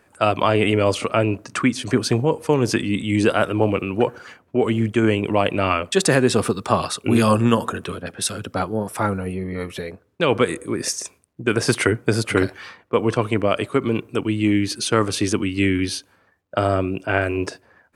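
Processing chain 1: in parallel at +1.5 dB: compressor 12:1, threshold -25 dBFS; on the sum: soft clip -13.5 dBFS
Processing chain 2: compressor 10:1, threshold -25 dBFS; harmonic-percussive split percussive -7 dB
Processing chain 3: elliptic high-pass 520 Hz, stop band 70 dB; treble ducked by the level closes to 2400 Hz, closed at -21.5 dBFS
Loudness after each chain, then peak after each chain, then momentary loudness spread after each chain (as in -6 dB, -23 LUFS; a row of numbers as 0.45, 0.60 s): -21.5, -33.5, -26.5 LUFS; -13.5, -15.0, -4.5 dBFS; 6, 6, 12 LU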